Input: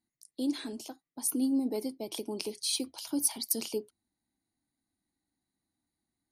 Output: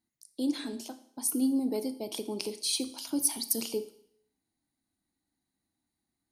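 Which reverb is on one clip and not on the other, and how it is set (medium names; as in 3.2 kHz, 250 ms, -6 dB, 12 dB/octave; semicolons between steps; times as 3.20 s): Schroeder reverb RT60 0.65 s, combs from 27 ms, DRR 12 dB; trim +1 dB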